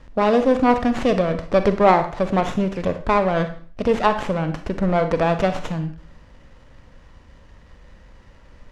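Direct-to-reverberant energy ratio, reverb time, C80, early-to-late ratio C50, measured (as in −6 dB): 8.5 dB, 0.45 s, 15.0 dB, 10.5 dB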